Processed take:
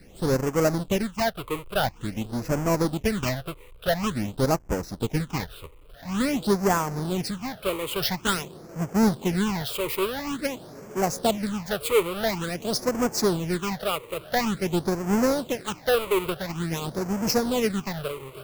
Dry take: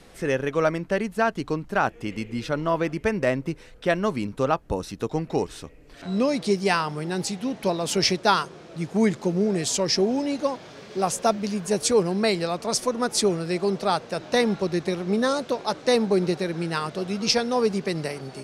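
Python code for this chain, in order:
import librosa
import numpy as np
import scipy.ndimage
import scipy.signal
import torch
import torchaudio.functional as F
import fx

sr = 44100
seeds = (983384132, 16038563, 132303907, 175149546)

y = fx.halfwave_hold(x, sr)
y = fx.phaser_stages(y, sr, stages=8, low_hz=210.0, high_hz=3800.0, hz=0.48, feedback_pct=20)
y = y * librosa.db_to_amplitude(-4.0)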